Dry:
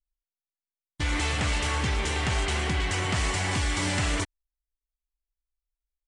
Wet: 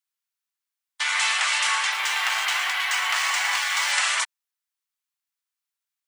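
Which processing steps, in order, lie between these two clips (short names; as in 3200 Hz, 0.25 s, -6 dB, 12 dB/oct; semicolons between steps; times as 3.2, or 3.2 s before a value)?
inverse Chebyshev high-pass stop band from 160 Hz, stop band 80 dB; 1.92–3.92 decimation joined by straight lines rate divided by 3×; gain +8.5 dB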